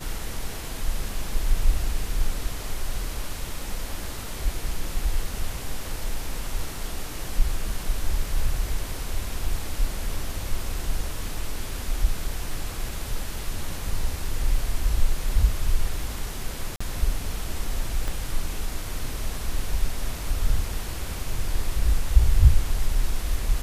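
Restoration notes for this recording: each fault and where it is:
0:16.76–0:16.80: drop-out 45 ms
0:18.08: click

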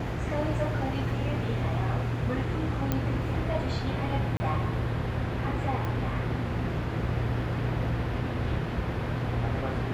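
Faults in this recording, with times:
0:02.92: click −13 dBFS
0:04.37–0:04.40: drop-out 30 ms
0:05.85: click −21 dBFS

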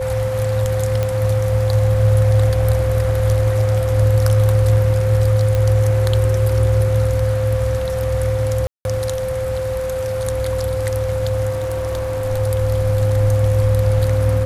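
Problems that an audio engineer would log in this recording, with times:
whistle 520 Hz −20 dBFS
0:01.03: click −8 dBFS
0:05.55: click −8 dBFS
0:08.67–0:08.85: drop-out 181 ms
0:11.50–0:12.25: clipping −18 dBFS

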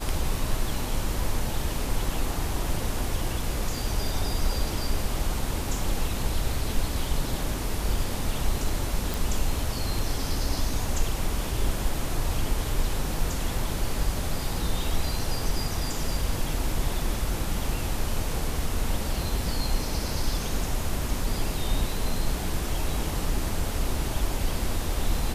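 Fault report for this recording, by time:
0:09.14: click

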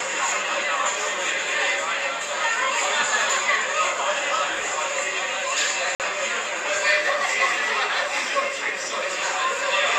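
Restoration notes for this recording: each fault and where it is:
0:05.95–0:06.00: drop-out 48 ms

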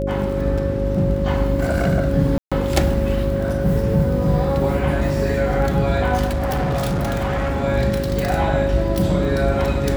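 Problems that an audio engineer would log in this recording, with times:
surface crackle 10 per second
mains hum 50 Hz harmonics 8 −24 dBFS
whistle 550 Hz −23 dBFS
0:02.38–0:02.52: drop-out 136 ms
0:06.26–0:07.64: clipping −17.5 dBFS

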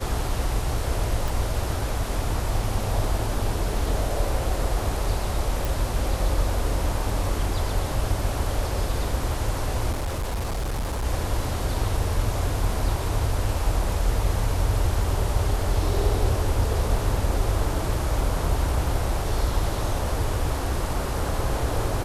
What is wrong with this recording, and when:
0:01.28: click
0:05.65: click
0:09.91–0:11.05: clipping −23.5 dBFS

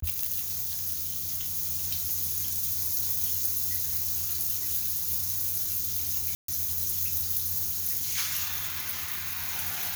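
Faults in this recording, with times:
0:06.35–0:06.48: drop-out 133 ms

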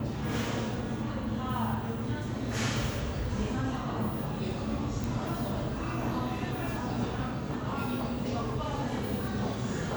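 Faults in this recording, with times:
0:05.04: click

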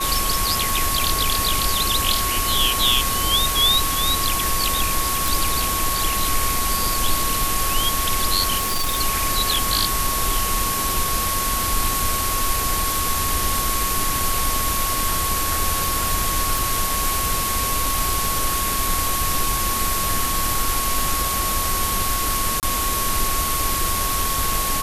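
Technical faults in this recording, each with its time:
whistle 1,100 Hz −25 dBFS
0:05.28: click
0:08.57–0:08.99: clipping −17.5 dBFS
0:16.58: click
0:22.60–0:22.63: drop-out 28 ms

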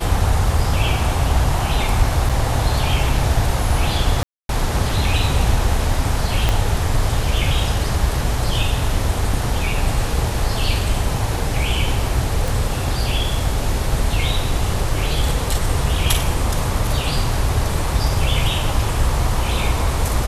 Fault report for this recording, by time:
0:02.29–0:02.30: drop-out 6.2 ms
0:04.23–0:04.49: drop-out 262 ms
0:06.49: click −4 dBFS
0:12.48: click

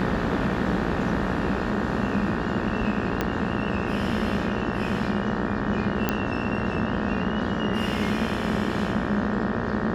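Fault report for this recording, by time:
mains buzz 60 Hz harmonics 31 −31 dBFS
0:03.21: click −10 dBFS
0:06.09: click −8 dBFS

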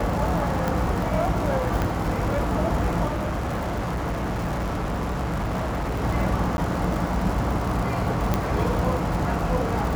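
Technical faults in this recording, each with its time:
surface crackle 150 per second −28 dBFS
0:00.68: click
0:01.82: click −12 dBFS
0:03.07–0:06.04: clipping −23 dBFS
0:06.57–0:06.58: drop-out 11 ms
0:08.34: click −9 dBFS

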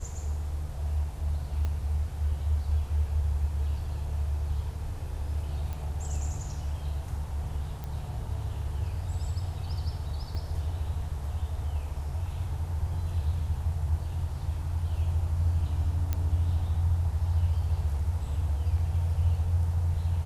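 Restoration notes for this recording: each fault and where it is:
0:01.65: click −21 dBFS
0:05.73: click
0:07.84: click
0:10.35: drop-out 2.5 ms
0:16.13: click −16 dBFS

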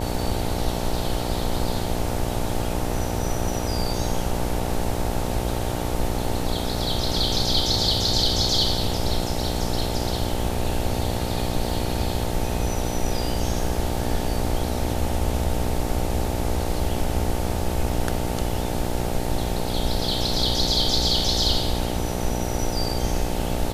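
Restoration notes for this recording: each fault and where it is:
mains buzz 60 Hz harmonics 15 −28 dBFS

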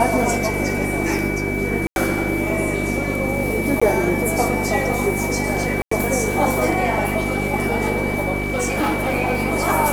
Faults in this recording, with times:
mains hum 50 Hz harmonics 8 −25 dBFS
whistle 2,300 Hz −26 dBFS
0:01.87–0:01.96: drop-out 91 ms
0:03.80–0:03.81: drop-out 15 ms
0:05.82–0:05.91: drop-out 94 ms
0:08.38–0:09.14: clipping −16 dBFS

